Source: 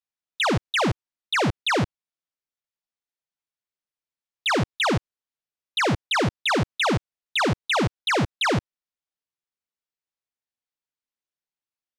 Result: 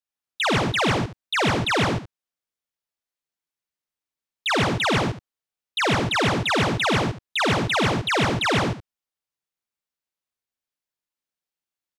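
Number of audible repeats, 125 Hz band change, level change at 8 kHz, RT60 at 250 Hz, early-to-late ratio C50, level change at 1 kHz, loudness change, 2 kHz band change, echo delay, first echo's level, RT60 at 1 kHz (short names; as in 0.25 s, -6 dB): 4, +2.0 dB, +2.0 dB, none, none, +2.0 dB, +2.0 dB, +2.0 dB, 47 ms, -5.0 dB, none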